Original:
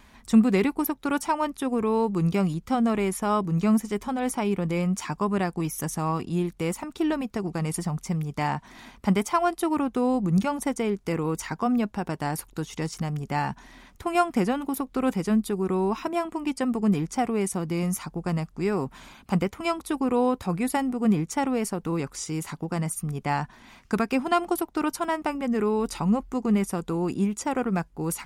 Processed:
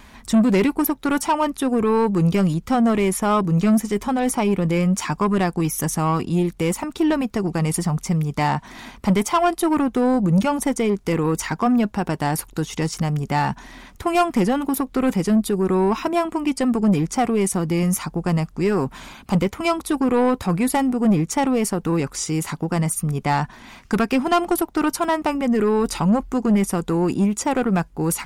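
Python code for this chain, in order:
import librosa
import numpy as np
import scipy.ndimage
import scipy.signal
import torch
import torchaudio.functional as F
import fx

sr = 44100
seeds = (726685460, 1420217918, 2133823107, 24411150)

y = 10.0 ** (-19.5 / 20.0) * np.tanh(x / 10.0 ** (-19.5 / 20.0))
y = F.gain(torch.from_numpy(y), 8.0).numpy()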